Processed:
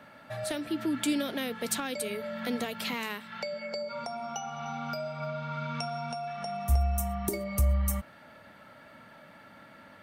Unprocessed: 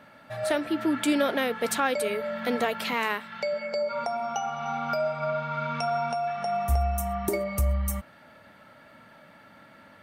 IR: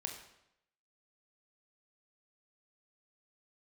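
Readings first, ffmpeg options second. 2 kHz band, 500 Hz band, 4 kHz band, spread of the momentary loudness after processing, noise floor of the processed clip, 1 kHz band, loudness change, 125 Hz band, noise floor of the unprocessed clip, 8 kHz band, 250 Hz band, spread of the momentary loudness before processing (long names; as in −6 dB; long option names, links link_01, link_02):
−7.0 dB, −8.0 dB, −2.0 dB, 24 LU, −53 dBFS, −8.0 dB, −4.5 dB, 0.0 dB, −53 dBFS, 0.0 dB, −3.0 dB, 5 LU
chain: -filter_complex "[0:a]acrossover=split=280|3000[link_01][link_02][link_03];[link_02]acompressor=threshold=-37dB:ratio=4[link_04];[link_01][link_04][link_03]amix=inputs=3:normalize=0"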